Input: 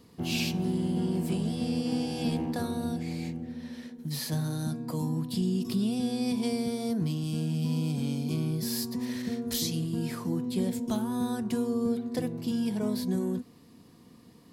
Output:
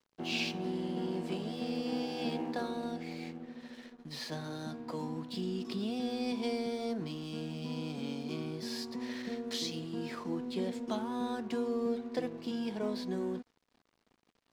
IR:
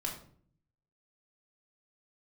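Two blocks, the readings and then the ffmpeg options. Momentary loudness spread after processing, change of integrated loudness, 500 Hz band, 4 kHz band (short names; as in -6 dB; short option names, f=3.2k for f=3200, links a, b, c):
7 LU, -6.5 dB, -1.5 dB, -3.0 dB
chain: -af "highpass=320,lowpass=4.3k,aeval=exprs='sgn(val(0))*max(abs(val(0))-0.00158,0)':c=same"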